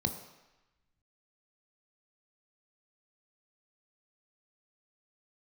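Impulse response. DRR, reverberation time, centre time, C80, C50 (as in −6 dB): 6.0 dB, 1.0 s, 19 ms, 11.0 dB, 9.0 dB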